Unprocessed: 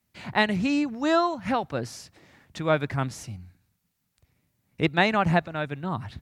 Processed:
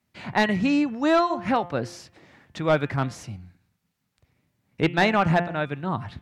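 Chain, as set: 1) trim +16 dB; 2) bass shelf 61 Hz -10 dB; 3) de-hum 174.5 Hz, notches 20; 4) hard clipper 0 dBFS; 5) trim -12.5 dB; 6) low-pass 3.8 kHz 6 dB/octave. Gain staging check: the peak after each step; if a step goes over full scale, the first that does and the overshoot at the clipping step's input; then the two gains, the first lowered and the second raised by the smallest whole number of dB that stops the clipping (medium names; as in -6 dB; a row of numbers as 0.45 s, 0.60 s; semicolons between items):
+9.5 dBFS, +10.0 dBFS, +9.5 dBFS, 0.0 dBFS, -12.5 dBFS, -12.5 dBFS; step 1, 9.5 dB; step 1 +6 dB, step 5 -2.5 dB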